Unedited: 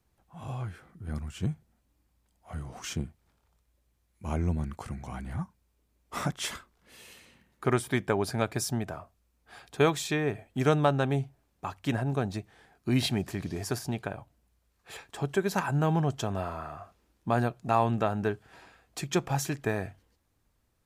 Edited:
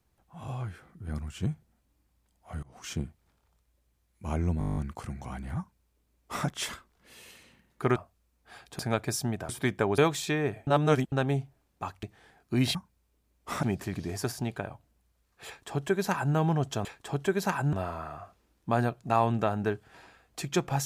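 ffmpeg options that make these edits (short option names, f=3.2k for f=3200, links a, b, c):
-filter_complex "[0:a]asplit=22[a][b][c][d][e][f][g][h][i][j][k][l][m][n][o][p][q][r][s][t][u][v];[a]atrim=end=2.63,asetpts=PTS-STARTPTS,afade=t=out:st=2.626:d=0.004:c=hsin:silence=0.0749894[w];[b]atrim=start=2.63:end=4.612,asetpts=PTS-STARTPTS,afade=t=in:d=0.35:silence=0.0749894[x];[c]atrim=start=4.588:end=4.612[y];[d]atrim=start=4.588:end=4.612[z];[e]atrim=start=4.588:end=4.612[aa];[f]atrim=start=4.588:end=4.612[ab];[g]atrim=start=4.588:end=4.612[ac];[h]atrim=start=4.588:end=4.612[ad];[i]atrim=start=4.588:end=4.612[ae];[j]atrim=start=4.588:end=4.612[af];[k]atrim=start=4.588:end=7.782[ag];[l]atrim=start=8.968:end=9.802[ah];[m]atrim=start=8.268:end=8.972[ai];[n]atrim=start=7.778:end=8.272[aj];[o]atrim=start=9.798:end=10.492[ak];[p]atrim=start=10.488:end=10.942,asetpts=PTS-STARTPTS,areverse[al];[q]atrim=start=10.938:end=11.852[am];[r]atrim=start=12.378:end=13.102[an];[s]atrim=start=5.398:end=6.282[ao];[t]atrim=start=13.098:end=16.322[ap];[u]atrim=start=14.938:end=15.822[aq];[v]atrim=start=16.318[ar];[w][x]concat=n=2:v=0:a=1[as];[as][y]acrossfade=d=0.004:c1=hsin:c2=hsin[at];[at][z]acrossfade=d=0.004:c1=hsin:c2=hsin[au];[au][aa]acrossfade=d=0.004:c1=hsin:c2=hsin[av];[av][ab]acrossfade=d=0.004:c1=hsin:c2=hsin[aw];[aw][ac]acrossfade=d=0.004:c1=hsin:c2=hsin[ax];[ax][ad]acrossfade=d=0.004:c1=hsin:c2=hsin[ay];[ay][ae]acrossfade=d=0.004:c1=hsin:c2=hsin[az];[az][af]acrossfade=d=0.004:c1=hsin:c2=hsin[ba];[ba][ag]acrossfade=d=0.004:c1=hsin:c2=hsin[bb];[bb][ah]acrossfade=d=0.004:c1=hsin:c2=hsin[bc];[bc][ai]acrossfade=d=0.004:c1=hsin:c2=hsin[bd];[bd][aj]acrossfade=d=0.004:c1=hsin:c2=hsin[be];[be][ak]acrossfade=d=0.004:c1=hsin:c2=hsin[bf];[bf][al]acrossfade=d=0.004:c1=hsin:c2=hsin[bg];[bg][am]acrossfade=d=0.004:c1=hsin:c2=hsin[bh];[bh][an]acrossfade=d=0.004:c1=hsin:c2=hsin[bi];[bi][ao]acrossfade=d=0.004:c1=hsin:c2=hsin[bj];[bj][ap]acrossfade=d=0.004:c1=hsin:c2=hsin[bk];[bk][aq]acrossfade=d=0.004:c1=hsin:c2=hsin[bl];[bl][ar]acrossfade=d=0.004:c1=hsin:c2=hsin"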